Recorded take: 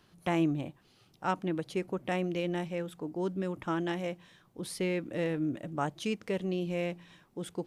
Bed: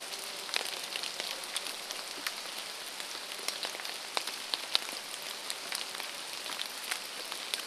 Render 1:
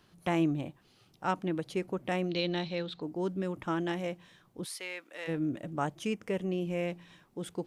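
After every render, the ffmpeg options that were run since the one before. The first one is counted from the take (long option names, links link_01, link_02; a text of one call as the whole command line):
ffmpeg -i in.wav -filter_complex "[0:a]asettb=1/sr,asplit=3[link_01][link_02][link_03];[link_01]atrim=end=2.294[link_04];[link_02]atrim=start=2.29:end=3.02,asetpts=PTS-STARTPTS,afade=type=in:duration=0.004:curve=qsin,afade=type=out:start_time=0.726:duration=0.004:curve=qsin,lowpass=frequency=4100:width_type=q:width=12[link_05];[link_03]atrim=start=3.016[link_06];[link_04][link_05]acrossfade=duration=0.004:curve1=hsin:curve2=qsin[link_07];[link_07][link_06]acrossfade=duration=0.004:curve1=qsin:curve2=hsin,asplit=3[link_08][link_09][link_10];[link_08]afade=type=out:start_time=4.64:duration=0.02[link_11];[link_09]highpass=960,afade=type=in:start_time=4.64:duration=0.02,afade=type=out:start_time=5.27:duration=0.02[link_12];[link_10]afade=type=in:start_time=5.27:duration=0.02[link_13];[link_11][link_12][link_13]amix=inputs=3:normalize=0,asettb=1/sr,asplit=3[link_14][link_15][link_16];[link_14]atrim=end=5.954[link_17];[link_15]atrim=start=5.95:end=6.88,asetpts=PTS-STARTPTS,afade=type=in:duration=0.004:curve=qsin,afade=type=out:start_time=0.926:duration=0.004:curve=qsin,equalizer=frequency=4100:width=3.3:gain=-10.5[link_18];[link_16]atrim=start=6.876[link_19];[link_17][link_18]acrossfade=duration=0.004:curve1=hsin:curve2=qsin[link_20];[link_20][link_19]acrossfade=duration=0.004:curve1=qsin:curve2=hsin" out.wav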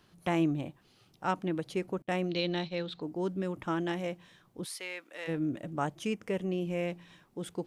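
ffmpeg -i in.wav -filter_complex "[0:a]asettb=1/sr,asplit=3[link_01][link_02][link_03];[link_01]atrim=end=2.024[link_04];[link_02]atrim=start=2.02:end=2.76,asetpts=PTS-STARTPTS,afade=type=in:duration=0.004:curve=qsin,afade=type=out:start_time=0.736:duration=0.004:curve=qsin,agate=range=-33dB:threshold=-36dB:ratio=3:release=100:detection=peak[link_05];[link_03]atrim=start=2.756[link_06];[link_04][link_05]acrossfade=duration=0.004:curve1=hsin:curve2=qsin[link_07];[link_07][link_06]acrossfade=duration=0.004:curve1=qsin:curve2=hsin" out.wav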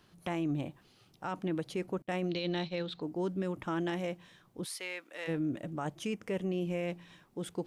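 ffmpeg -i in.wav -af "alimiter=level_in=2dB:limit=-24dB:level=0:latency=1:release=14,volume=-2dB,areverse,acompressor=mode=upward:threshold=-55dB:ratio=2.5,areverse" out.wav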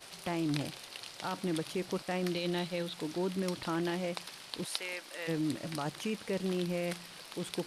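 ffmpeg -i in.wav -i bed.wav -filter_complex "[1:a]volume=-9dB[link_01];[0:a][link_01]amix=inputs=2:normalize=0" out.wav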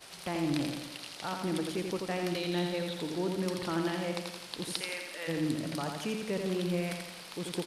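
ffmpeg -i in.wav -af "aecho=1:1:85|170|255|340|425|510|595|680:0.596|0.334|0.187|0.105|0.0586|0.0328|0.0184|0.0103" out.wav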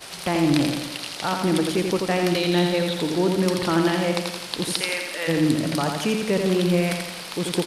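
ffmpeg -i in.wav -af "volume=11.5dB,alimiter=limit=-3dB:level=0:latency=1" out.wav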